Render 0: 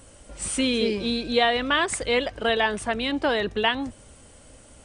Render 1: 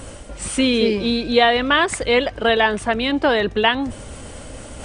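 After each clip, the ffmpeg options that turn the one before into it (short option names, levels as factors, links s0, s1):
-af "highshelf=f=5800:g=-7.5,areverse,acompressor=mode=upward:threshold=0.0282:ratio=2.5,areverse,volume=2.11"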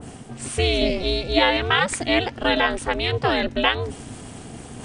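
-af "equalizer=f=86:t=o:w=2.3:g=3.5,aeval=exprs='val(0)*sin(2*PI*180*n/s)':c=same,adynamicequalizer=threshold=0.0224:dfrequency=2000:dqfactor=0.7:tfrequency=2000:tqfactor=0.7:attack=5:release=100:ratio=0.375:range=2:mode=boostabove:tftype=highshelf,volume=0.841"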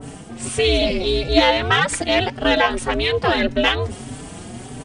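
-filter_complex "[0:a]asplit=2[s0][s1];[s1]acontrast=70,volume=1.41[s2];[s0][s2]amix=inputs=2:normalize=0,asplit=2[s3][s4];[s4]adelay=4.8,afreqshift=1.7[s5];[s3][s5]amix=inputs=2:normalize=1,volume=0.531"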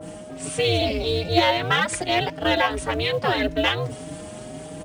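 -filter_complex "[0:a]afreqshift=35,asplit=2[s0][s1];[s1]acrusher=bits=5:mode=log:mix=0:aa=0.000001,volume=0.335[s2];[s0][s2]amix=inputs=2:normalize=0,aeval=exprs='val(0)+0.0251*sin(2*PI*620*n/s)':c=same,volume=0.473"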